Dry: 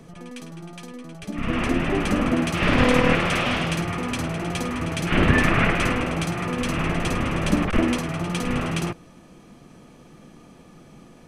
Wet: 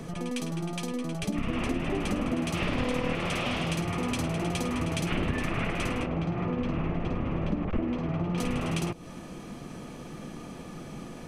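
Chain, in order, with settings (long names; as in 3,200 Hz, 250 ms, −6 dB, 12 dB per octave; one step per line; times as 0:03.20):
0:06.06–0:08.38: head-to-tape spacing loss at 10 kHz 36 dB
downward compressor 6 to 1, threshold −33 dBFS, peak gain reduction 19.5 dB
dynamic equaliser 1,600 Hz, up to −6 dB, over −56 dBFS, Q 1.9
level +6.5 dB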